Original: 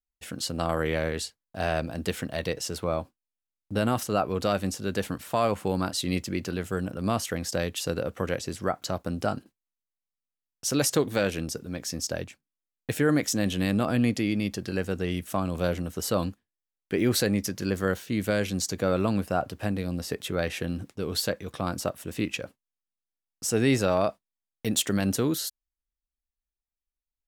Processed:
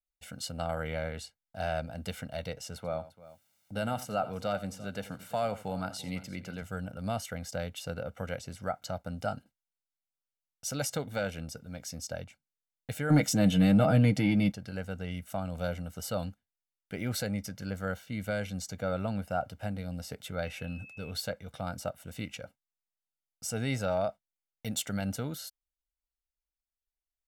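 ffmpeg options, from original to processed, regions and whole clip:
-filter_complex "[0:a]asettb=1/sr,asplit=3[a][b][c];[a]atrim=end=2.764[d];[b]atrim=start=2.76:end=6.62,asetpts=PTS-STARTPTS,afade=t=in:d=0.004:c=qsin,afade=t=out:st=3.856:d=0.004:c=qsin,highpass=110,acompressor=mode=upward:threshold=-41dB:ratio=2.5:attack=3.2:release=140:knee=2.83:detection=peak,aecho=1:1:86|342:0.158|0.126,atrim=end_sample=170226[e];[c]atrim=start=6.616[f];[d][e]acrossfade=d=0.004:c1=hsin:c2=qsin[g];[g][f]acrossfade=d=0.004:c1=qsin:c2=hsin,asettb=1/sr,asplit=3[h][i][j];[h]atrim=end=13.104[k];[i]atrim=start=13.1:end=14.52,asetpts=PTS-STARTPTS,afade=t=in:d=0.004:c=qsin,afade=t=out:st=1.416:d=0.004:c=qsin,equalizer=f=210:w=0.75:g=5.5,aecho=1:1:6.4:0.5,atrim=end_sample=62622,acontrast=67[l];[j]atrim=start=14.516[m];[k][l]acrossfade=d=0.004:c1=hsin:c2=qsin[n];[n][m]acrossfade=d=0.004:c1=qsin:c2=hsin,asettb=1/sr,asplit=3[o][p][q];[o]atrim=end=20.454[r];[p]atrim=start=20.45:end=21.11,asetpts=PTS-STARTPTS,afade=t=in:d=0.004:c=qsin,afade=t=out:st=0.656:d=0.004:c=qsin,bandreject=f=700:w=13,aeval=exprs='val(0)+0.02*sin(2*PI*2600*n/s)':c=same[s];[q]atrim=start=21.106[t];[r][s]acrossfade=d=0.004:c1=hsin:c2=qsin[u];[u][t]acrossfade=d=0.004:c1=qsin:c2=hsin,aecho=1:1:1.4:0.72,adynamicequalizer=threshold=0.00708:dfrequency=3200:dqfactor=0.7:tfrequency=3200:tqfactor=0.7:attack=5:release=100:ratio=0.375:range=3:mode=cutabove:tftype=highshelf,volume=-8.5dB"

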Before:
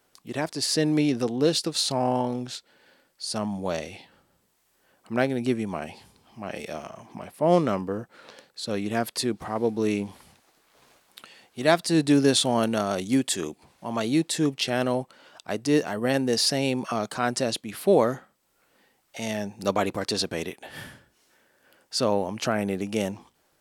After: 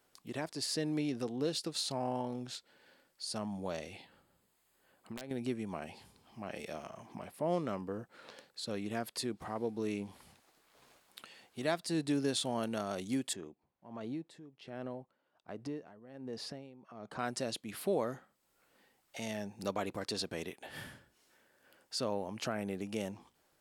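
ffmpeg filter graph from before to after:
-filter_complex "[0:a]asettb=1/sr,asplit=3[a][b][c];[a]atrim=end=3.934[d];[b]atrim=start=3.93:end=5.31,asetpts=PTS-STARTPTS,afade=t=in:d=0.004:c=qsin,afade=t=out:st=1.376:d=0.004:c=qsin,bandreject=f=5.7k:w=5.9,acompressor=threshold=-32dB:ratio=12:attack=3.2:release=140:knee=1:detection=peak,aeval=exprs='(mod(16.8*val(0)+1,2)-1)/16.8':c=same[e];[c]atrim=start=5.306[f];[d][e]acrossfade=d=0.004:c1=hsin:c2=qsin[g];[g][f]acrossfade=d=0.004:c1=qsin:c2=hsin,asettb=1/sr,asplit=3[h][i][j];[h]atrim=end=13.334[k];[i]atrim=start=13.33:end=17.19,asetpts=PTS-STARTPTS,afade=t=in:d=0.004:c=qsin,afade=t=out:st=3.856:d=0.004:c=qsin,lowpass=f=1.1k:p=1,acompressor=threshold=-31dB:ratio=2:attack=3.2:release=140:knee=1:detection=peak,aeval=exprs='val(0)*pow(10,-18*(0.5-0.5*cos(2*PI*1.3*n/s))/20)':c=same[l];[j]atrim=start=17.186[m];[k][l]acrossfade=d=0.004:c1=hsin:c2=qsin[n];[n][m]acrossfade=d=0.004:c1=qsin:c2=hsin,acompressor=threshold=-37dB:ratio=1.5,bandreject=f=5.9k:w=30,volume=-5.5dB"

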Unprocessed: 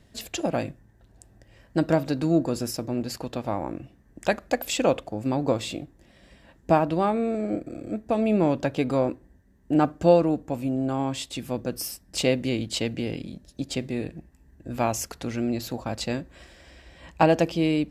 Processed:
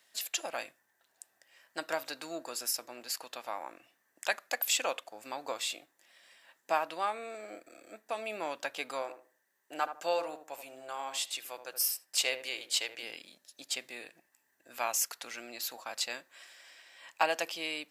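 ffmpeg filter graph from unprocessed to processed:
-filter_complex "[0:a]asettb=1/sr,asplit=3[a][b][c];[a]atrim=end=9.024[d];[b]atrim=start=9.02:end=13.03,asetpts=PTS-STARTPTS,afade=t=in:d=0.004:c=qsin,afade=t=out:st=4.006:d=0.004:c=qsin,highpass=120,equalizer=f=230:t=o:w=0.44:g=-13.5,asplit=2[e][f];[f]adelay=77,lowpass=f=960:p=1,volume=-7.5dB,asplit=2[g][h];[h]adelay=77,lowpass=f=960:p=1,volume=0.29,asplit=2[i][j];[j]adelay=77,lowpass=f=960:p=1,volume=0.29,asplit=2[k][l];[l]adelay=77,lowpass=f=960:p=1,volume=0.29[m];[e][g][i][k][m]amix=inputs=5:normalize=0,atrim=end_sample=176841[n];[c]atrim=start=13.026[o];[d][n]acrossfade=d=0.004:c1=hsin:c2=qsin[p];[p][o]acrossfade=d=0.004:c1=qsin:c2=hsin,highpass=1.1k,highshelf=f=11k:g=10.5,volume=-1.5dB"

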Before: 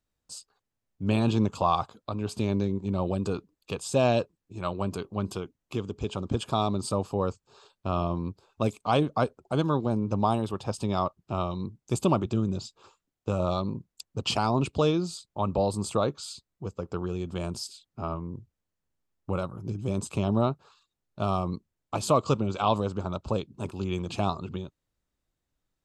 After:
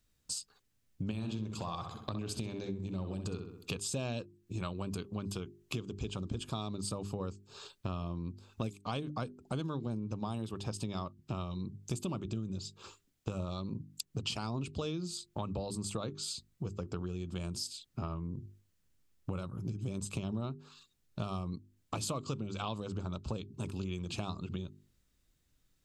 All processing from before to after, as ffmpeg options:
-filter_complex "[0:a]asettb=1/sr,asplit=3[a][b][c];[a]atrim=end=1.114[d];[b]atrim=start=1.11:end=3.71,asetpts=PTS-STARTPTS,afade=t=in:d=0.004:c=qsin,afade=t=out:st=2.596:d=0.004:c=qsin,acompressor=threshold=-31dB:ratio=2:attack=3.2:release=140:knee=1:detection=peak,asplit=2[e][f];[f]adelay=64,lowpass=f=3.4k:p=1,volume=-7dB,asplit=2[g][h];[h]adelay=64,lowpass=f=3.4k:p=1,volume=0.44,asplit=2[i][j];[j]adelay=64,lowpass=f=3.4k:p=1,volume=0.44,asplit=2[k][l];[l]adelay=64,lowpass=f=3.4k:p=1,volume=0.44,asplit=2[m][n];[n]adelay=64,lowpass=f=3.4k:p=1,volume=0.44[o];[e][g][i][k][m][o]amix=inputs=6:normalize=0,atrim=end_sample=114660[p];[c]atrim=start=3.706[q];[d][p]acrossfade=d=0.004:c1=hsin:c2=qsin[r];[r][q]acrossfade=d=0.004:c1=qsin:c2=hsin,equalizer=f=750:w=0.69:g=-10,bandreject=f=50:t=h:w=6,bandreject=f=100:t=h:w=6,bandreject=f=150:t=h:w=6,bandreject=f=200:t=h:w=6,bandreject=f=250:t=h:w=6,bandreject=f=300:t=h:w=6,bandreject=f=350:t=h:w=6,bandreject=f=400:t=h:w=6,acompressor=threshold=-45dB:ratio=6,volume=9.5dB"

